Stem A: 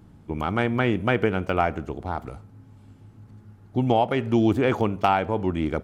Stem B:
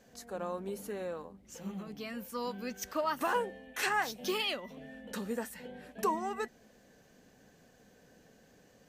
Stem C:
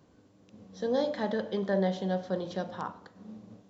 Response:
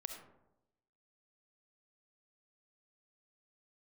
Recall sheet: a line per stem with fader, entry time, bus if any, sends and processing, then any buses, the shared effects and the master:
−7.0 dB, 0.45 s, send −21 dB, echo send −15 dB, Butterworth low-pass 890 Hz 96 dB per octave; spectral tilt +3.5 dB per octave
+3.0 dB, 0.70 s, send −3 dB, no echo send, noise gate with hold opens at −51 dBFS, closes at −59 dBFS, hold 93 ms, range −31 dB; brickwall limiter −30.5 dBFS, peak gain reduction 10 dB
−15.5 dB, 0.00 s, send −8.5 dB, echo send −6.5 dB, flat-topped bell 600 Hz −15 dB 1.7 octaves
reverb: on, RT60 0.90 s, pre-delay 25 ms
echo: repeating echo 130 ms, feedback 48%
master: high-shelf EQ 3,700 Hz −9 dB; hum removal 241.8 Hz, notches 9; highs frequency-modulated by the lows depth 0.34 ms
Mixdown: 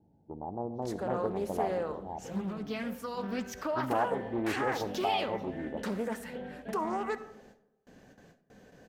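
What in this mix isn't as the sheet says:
stem A: entry 0.45 s → 0.00 s
stem C −15.5 dB → −25.5 dB

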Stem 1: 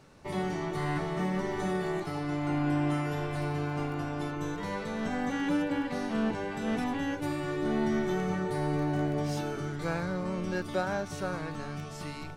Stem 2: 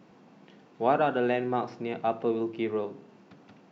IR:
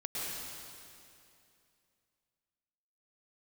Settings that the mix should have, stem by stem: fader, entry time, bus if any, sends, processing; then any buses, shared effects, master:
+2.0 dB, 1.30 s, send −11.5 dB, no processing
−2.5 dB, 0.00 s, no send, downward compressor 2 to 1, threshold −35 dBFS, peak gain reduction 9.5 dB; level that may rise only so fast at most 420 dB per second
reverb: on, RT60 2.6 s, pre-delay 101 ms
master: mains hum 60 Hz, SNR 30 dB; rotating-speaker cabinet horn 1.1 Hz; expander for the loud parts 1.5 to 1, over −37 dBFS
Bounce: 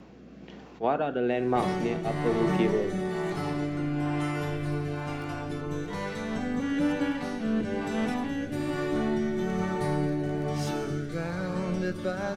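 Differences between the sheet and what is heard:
stem 2 −2.5 dB → +9.0 dB
master: missing expander for the loud parts 1.5 to 1, over −37 dBFS

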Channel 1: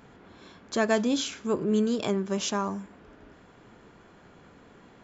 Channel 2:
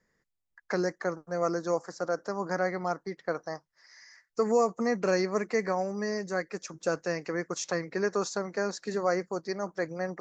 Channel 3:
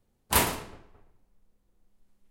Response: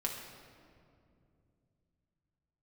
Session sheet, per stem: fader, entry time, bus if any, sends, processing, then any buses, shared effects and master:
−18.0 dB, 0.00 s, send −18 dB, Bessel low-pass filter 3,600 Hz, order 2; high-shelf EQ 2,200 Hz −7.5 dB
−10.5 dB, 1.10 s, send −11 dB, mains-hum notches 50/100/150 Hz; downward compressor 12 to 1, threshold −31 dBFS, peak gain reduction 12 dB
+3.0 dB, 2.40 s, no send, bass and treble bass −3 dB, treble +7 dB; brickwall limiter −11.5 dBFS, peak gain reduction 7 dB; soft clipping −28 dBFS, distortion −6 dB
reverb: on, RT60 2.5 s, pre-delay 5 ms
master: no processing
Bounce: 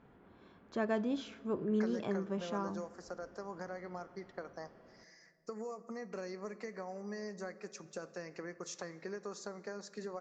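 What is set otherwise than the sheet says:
stem 1 −18.0 dB → −9.5 dB
stem 3: muted

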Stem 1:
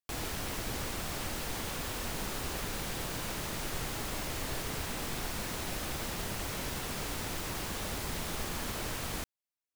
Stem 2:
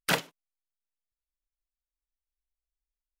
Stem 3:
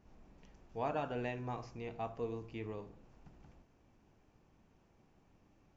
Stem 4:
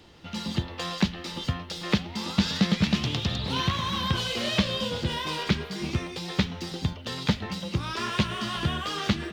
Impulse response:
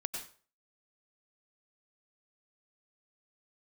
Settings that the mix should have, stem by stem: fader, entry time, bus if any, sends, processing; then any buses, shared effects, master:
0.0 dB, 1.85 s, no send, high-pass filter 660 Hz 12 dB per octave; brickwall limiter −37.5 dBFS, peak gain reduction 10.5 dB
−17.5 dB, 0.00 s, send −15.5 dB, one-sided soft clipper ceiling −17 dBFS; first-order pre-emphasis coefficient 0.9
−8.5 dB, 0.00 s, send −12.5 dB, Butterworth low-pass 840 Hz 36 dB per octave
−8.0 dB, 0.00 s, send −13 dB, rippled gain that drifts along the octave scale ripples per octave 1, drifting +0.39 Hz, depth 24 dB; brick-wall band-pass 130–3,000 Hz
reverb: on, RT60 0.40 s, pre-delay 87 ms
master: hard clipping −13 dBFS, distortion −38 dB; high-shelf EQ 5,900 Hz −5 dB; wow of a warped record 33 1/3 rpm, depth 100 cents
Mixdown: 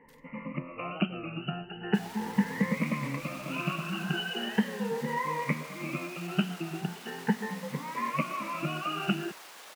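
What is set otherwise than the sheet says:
stem 2 −17.5 dB → −29.0 dB
reverb return −9.5 dB

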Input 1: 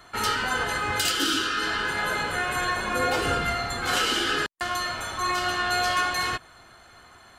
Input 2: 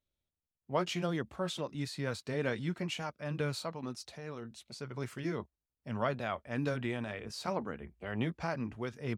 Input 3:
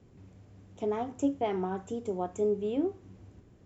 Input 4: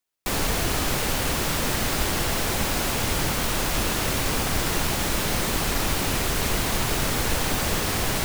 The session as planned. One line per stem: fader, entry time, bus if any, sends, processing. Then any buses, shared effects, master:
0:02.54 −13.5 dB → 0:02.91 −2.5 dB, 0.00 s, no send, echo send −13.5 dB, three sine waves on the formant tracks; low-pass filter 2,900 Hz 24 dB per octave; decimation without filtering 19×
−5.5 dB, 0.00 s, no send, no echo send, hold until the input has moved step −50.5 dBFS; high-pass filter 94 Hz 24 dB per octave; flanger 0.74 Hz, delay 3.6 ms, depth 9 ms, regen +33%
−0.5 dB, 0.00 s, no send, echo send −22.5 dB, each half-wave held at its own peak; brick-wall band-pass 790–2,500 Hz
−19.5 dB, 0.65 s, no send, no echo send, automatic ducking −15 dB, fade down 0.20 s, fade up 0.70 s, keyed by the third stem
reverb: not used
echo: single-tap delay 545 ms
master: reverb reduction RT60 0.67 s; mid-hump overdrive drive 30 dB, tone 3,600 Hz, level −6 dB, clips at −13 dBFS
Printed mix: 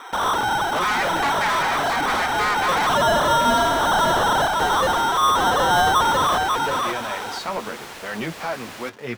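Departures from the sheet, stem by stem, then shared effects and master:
stem 1 −13.5 dB → −7.5 dB
stem 4 −19.5 dB → −31.5 dB
master: missing reverb reduction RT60 0.67 s

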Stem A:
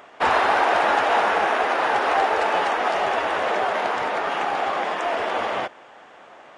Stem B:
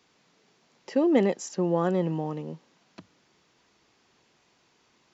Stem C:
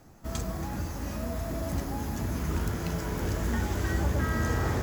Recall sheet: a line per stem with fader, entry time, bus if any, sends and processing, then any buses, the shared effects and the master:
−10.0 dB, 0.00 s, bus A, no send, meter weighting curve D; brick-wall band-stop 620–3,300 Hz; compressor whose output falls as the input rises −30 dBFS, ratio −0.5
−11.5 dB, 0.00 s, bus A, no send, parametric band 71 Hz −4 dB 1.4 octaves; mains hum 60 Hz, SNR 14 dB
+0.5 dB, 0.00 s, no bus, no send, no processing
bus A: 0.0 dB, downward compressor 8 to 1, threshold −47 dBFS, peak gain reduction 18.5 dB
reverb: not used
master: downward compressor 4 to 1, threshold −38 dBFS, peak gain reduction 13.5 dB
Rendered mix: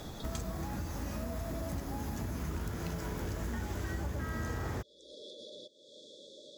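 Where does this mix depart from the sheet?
stem A −10.0 dB → −3.5 dB
stem C +0.5 dB → +10.0 dB

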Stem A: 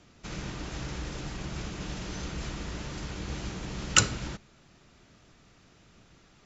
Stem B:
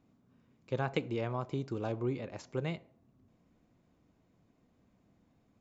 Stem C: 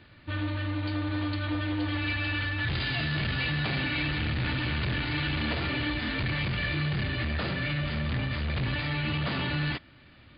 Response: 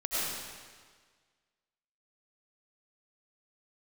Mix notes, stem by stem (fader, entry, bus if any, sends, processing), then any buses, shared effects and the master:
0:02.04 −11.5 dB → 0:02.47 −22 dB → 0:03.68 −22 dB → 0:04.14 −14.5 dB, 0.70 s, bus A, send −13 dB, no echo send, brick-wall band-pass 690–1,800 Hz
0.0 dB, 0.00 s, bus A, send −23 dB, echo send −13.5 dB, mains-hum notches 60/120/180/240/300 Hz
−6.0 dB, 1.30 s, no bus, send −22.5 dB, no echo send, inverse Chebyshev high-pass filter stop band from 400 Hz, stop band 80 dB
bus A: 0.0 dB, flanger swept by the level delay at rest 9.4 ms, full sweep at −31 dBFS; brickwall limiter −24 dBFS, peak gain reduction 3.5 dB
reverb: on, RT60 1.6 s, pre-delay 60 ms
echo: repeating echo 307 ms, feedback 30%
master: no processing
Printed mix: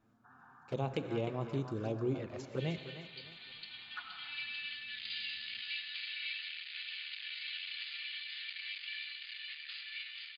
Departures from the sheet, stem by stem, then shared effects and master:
stem A: entry 0.70 s → 0.00 s
stem C: entry 1.30 s → 2.30 s

